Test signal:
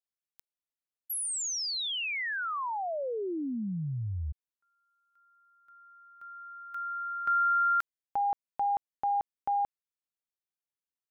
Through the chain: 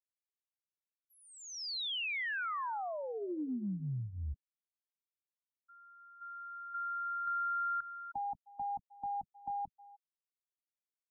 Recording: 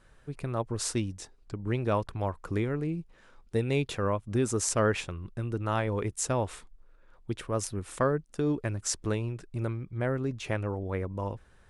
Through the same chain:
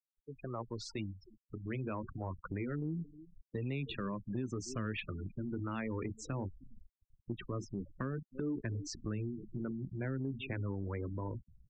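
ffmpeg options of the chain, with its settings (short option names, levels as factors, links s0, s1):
-filter_complex "[0:a]acrossover=split=450|1400[s0][s1][s2];[s0]flanger=delay=15:depth=7.5:speed=0.25[s3];[s1]alimiter=level_in=1.88:limit=0.0631:level=0:latency=1:release=48,volume=0.531[s4];[s3][s4][s2]amix=inputs=3:normalize=0,asplit=2[s5][s6];[s6]adelay=310,highpass=300,lowpass=3400,asoftclip=type=hard:threshold=0.0891,volume=0.141[s7];[s5][s7]amix=inputs=2:normalize=0,acrusher=bits=8:mix=0:aa=0.000001,lowpass=6400,asubboost=boost=11:cutoff=170,afftfilt=real='re*gte(hypot(re,im),0.02)':imag='im*gte(hypot(re,im),0.02)':win_size=1024:overlap=0.75,acrossover=split=230 4700:gain=0.126 1 0.0891[s8][s9][s10];[s8][s9][s10]amix=inputs=3:normalize=0,acompressor=threshold=0.02:ratio=6:attack=4.9:release=113:knee=6:detection=peak"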